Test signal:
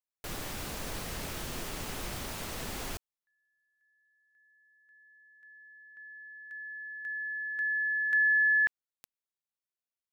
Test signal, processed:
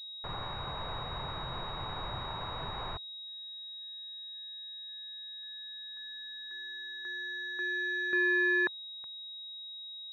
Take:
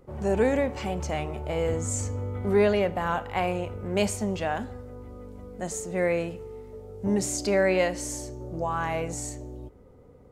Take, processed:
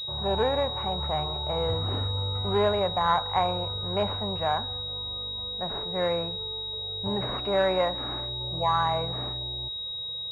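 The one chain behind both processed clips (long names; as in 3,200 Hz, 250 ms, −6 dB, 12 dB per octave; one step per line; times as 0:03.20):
octave-band graphic EQ 125/250/1,000 Hz +8/−11/+11 dB
switching amplifier with a slow clock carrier 3,800 Hz
level −2.5 dB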